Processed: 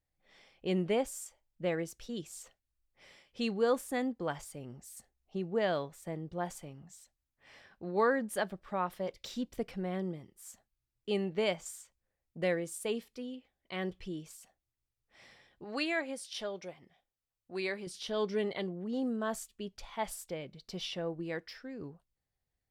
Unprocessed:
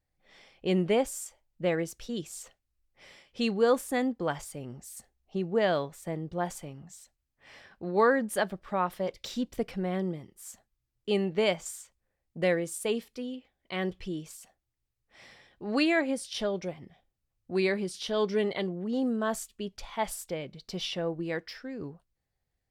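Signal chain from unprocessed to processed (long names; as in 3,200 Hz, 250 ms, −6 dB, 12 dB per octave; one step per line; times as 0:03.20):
0:15.64–0:17.87: low-shelf EQ 320 Hz −11.5 dB
level −5 dB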